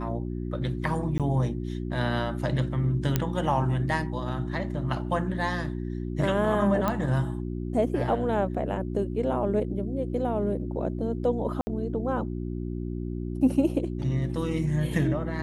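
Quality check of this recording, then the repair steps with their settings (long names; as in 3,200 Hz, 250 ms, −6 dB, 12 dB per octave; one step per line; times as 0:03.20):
mains hum 60 Hz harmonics 6 −32 dBFS
0:01.18–0:01.20: drop-out 17 ms
0:03.16: click −9 dBFS
0:06.88: click −13 dBFS
0:11.61–0:11.67: drop-out 60 ms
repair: click removal
hum removal 60 Hz, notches 6
repair the gap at 0:01.18, 17 ms
repair the gap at 0:11.61, 60 ms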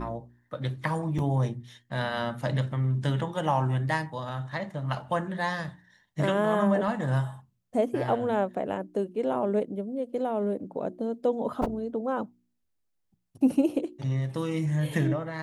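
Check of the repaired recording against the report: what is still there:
none of them is left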